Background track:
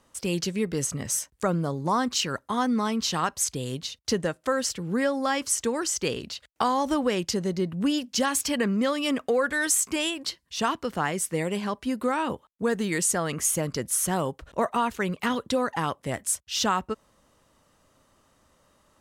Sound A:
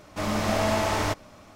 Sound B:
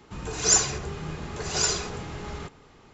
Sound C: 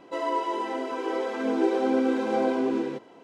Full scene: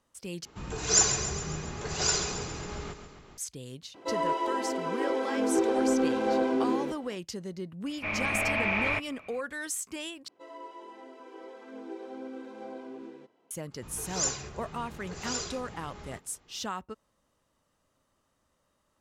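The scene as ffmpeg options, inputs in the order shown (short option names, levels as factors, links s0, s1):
-filter_complex "[2:a]asplit=2[s0][s1];[3:a]asplit=2[s2][s3];[0:a]volume=0.282[s4];[s0]aecho=1:1:136|272|408|544|680|816|952:0.316|0.187|0.11|0.0649|0.0383|0.0226|0.0133[s5];[s2]asoftclip=type=tanh:threshold=0.178[s6];[1:a]lowpass=f=2400:t=q:w=16[s7];[s4]asplit=3[s8][s9][s10];[s8]atrim=end=0.454[s11];[s5]atrim=end=2.93,asetpts=PTS-STARTPTS,volume=0.75[s12];[s9]atrim=start=3.376:end=10.284[s13];[s3]atrim=end=3.23,asetpts=PTS-STARTPTS,volume=0.133[s14];[s10]atrim=start=13.506[s15];[s6]atrim=end=3.23,asetpts=PTS-STARTPTS,volume=0.891,afade=t=in:d=0.004:c=hsin,afade=t=out:st=3.226:d=0.004:c=hsin,adelay=3940[s16];[s7]atrim=end=1.55,asetpts=PTS-STARTPTS,volume=0.355,afade=t=in:d=0.004:c=hsin,afade=t=out:st=1.546:d=0.004:c=hsin,adelay=346626S[s17];[s1]atrim=end=2.93,asetpts=PTS-STARTPTS,volume=0.316,afade=t=in:d=0.004:c=hsin,afade=t=out:st=2.926:d=0.004:c=hsin,adelay=13710[s18];[s11][s12]acrossfade=d=0.004:c1=hsin:c2=hsin[s19];[s19][s13]acrossfade=d=0.004:c1=hsin:c2=hsin[s20];[s20][s14]acrossfade=d=0.004:c1=hsin:c2=hsin[s21];[s21][s15]acrossfade=d=0.004:c1=hsin:c2=hsin[s22];[s22][s16][s17][s18]amix=inputs=4:normalize=0"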